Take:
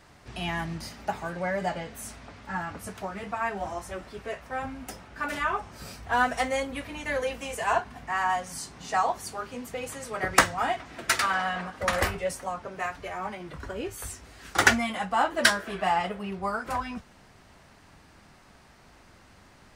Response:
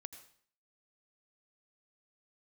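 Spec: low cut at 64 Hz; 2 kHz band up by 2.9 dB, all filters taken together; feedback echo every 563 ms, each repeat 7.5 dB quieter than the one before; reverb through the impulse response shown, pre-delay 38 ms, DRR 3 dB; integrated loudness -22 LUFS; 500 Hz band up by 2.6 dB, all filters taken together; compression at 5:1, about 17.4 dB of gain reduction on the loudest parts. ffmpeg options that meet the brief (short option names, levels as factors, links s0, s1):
-filter_complex "[0:a]highpass=64,equalizer=f=500:t=o:g=3,equalizer=f=2000:t=o:g=3.5,acompressor=threshold=0.0251:ratio=5,aecho=1:1:563|1126|1689|2252|2815:0.422|0.177|0.0744|0.0312|0.0131,asplit=2[s0][s1];[1:a]atrim=start_sample=2205,adelay=38[s2];[s1][s2]afir=irnorm=-1:irlink=0,volume=1.26[s3];[s0][s3]amix=inputs=2:normalize=0,volume=3.98"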